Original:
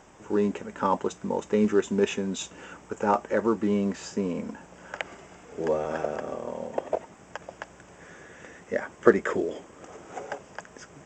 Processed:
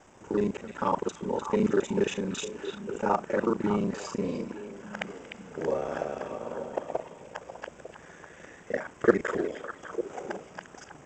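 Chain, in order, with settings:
reversed piece by piece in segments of 34 ms
echo through a band-pass that steps 300 ms, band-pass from 3,000 Hz, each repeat −1.4 octaves, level −4.5 dB
level −2 dB

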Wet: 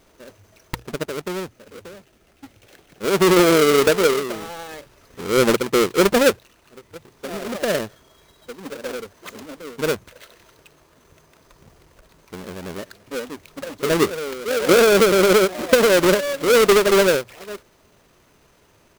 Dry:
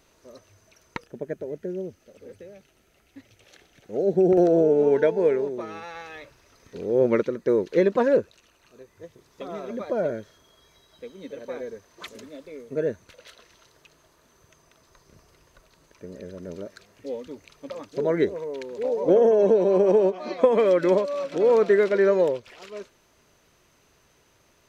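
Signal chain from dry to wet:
each half-wave held at its own peak
tempo change 1.3×
mains-hum notches 60/120 Hz
level +1 dB

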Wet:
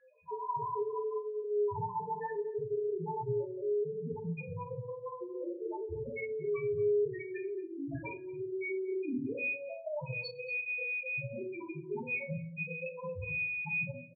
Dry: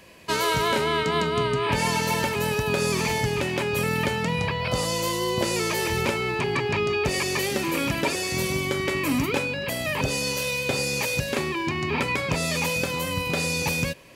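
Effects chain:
mains-hum notches 50/100/150/200/250/300/350/400/450 Hz
spectral peaks only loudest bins 1
single-tap delay 230 ms −21 dB
convolution reverb RT60 0.35 s, pre-delay 5 ms, DRR 0 dB
level −3.5 dB

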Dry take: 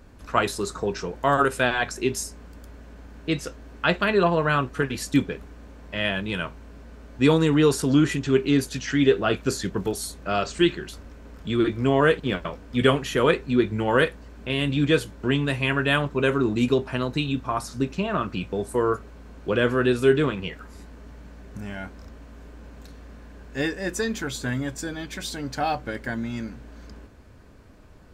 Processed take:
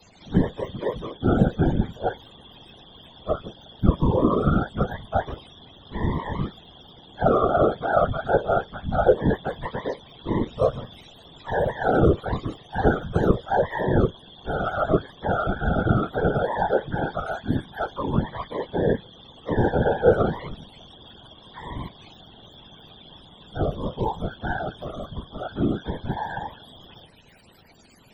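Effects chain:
frequency axis turned over on the octave scale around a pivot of 440 Hz
tape wow and flutter 15 cents
random phases in short frames
level +1 dB

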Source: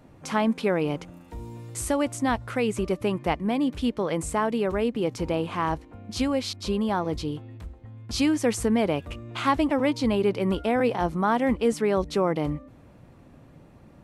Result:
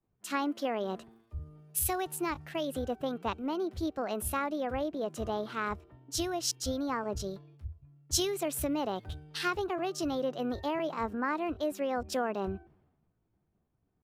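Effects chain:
downward compressor 6 to 1, threshold −24 dBFS, peak gain reduction 7.5 dB
pitch shifter +4.5 semitones
multiband upward and downward expander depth 100%
level −4.5 dB

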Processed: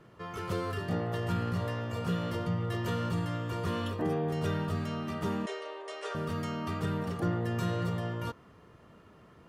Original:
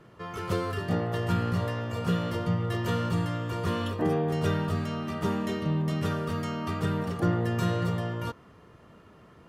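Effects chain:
0:05.46–0:06.15: Chebyshev band-pass filter 400–9,400 Hz, order 5
in parallel at −1.5 dB: brickwall limiter −23 dBFS, peak gain reduction 9 dB
on the sum: level −8 dB

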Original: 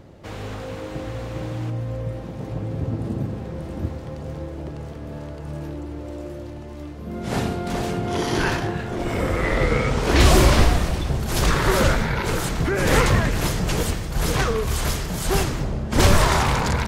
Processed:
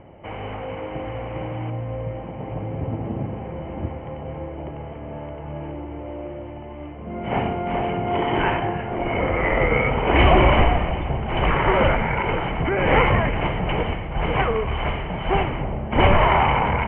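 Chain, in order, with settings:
Chebyshev low-pass with heavy ripple 3,100 Hz, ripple 9 dB
level +7 dB

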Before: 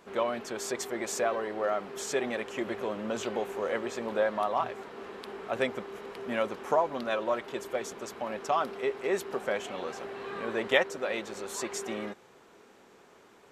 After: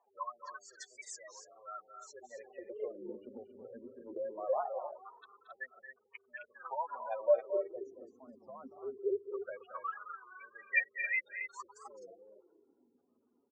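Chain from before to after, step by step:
sub-octave generator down 2 octaves, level +3 dB
0:08.95–0:10.21: comb filter 0.8 ms, depth 44%
gate on every frequency bin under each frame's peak −10 dB strong
LFO wah 0.21 Hz 240–2,400 Hz, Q 8.9
dynamic equaliser 500 Hz, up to +4 dB, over −55 dBFS, Q 2.7
automatic gain control gain up to 8 dB
meter weighting curve ITU-R 468
on a send: loudspeakers that aren't time-aligned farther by 77 metres −11 dB, 92 metres −9 dB
on the sum: wow of a warped record 33 1/3 rpm, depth 160 cents

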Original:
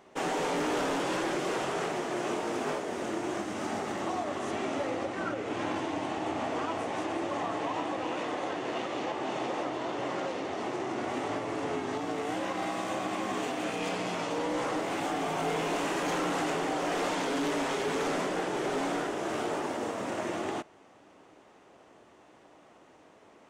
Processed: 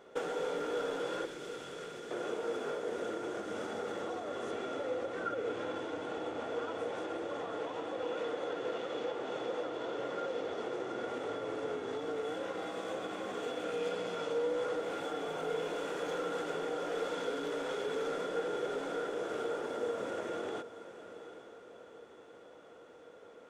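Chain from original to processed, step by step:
downward compressor, threshold −36 dBFS, peak gain reduction 9 dB
hollow resonant body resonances 480/1,400/3,400 Hz, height 16 dB, ringing for 45 ms
0:01.25–0:02.11: parametric band 730 Hz −13.5 dB 2.2 octaves
feedback delay with all-pass diffusion 781 ms, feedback 41%, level −13 dB
level −4.5 dB

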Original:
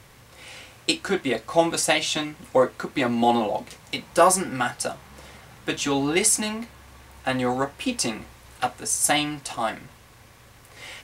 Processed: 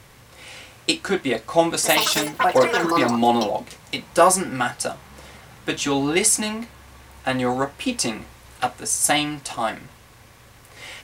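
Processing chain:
0:01.70–0:04.06: delay with pitch and tempo change per echo 135 ms, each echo +6 semitones, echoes 3
level +2 dB

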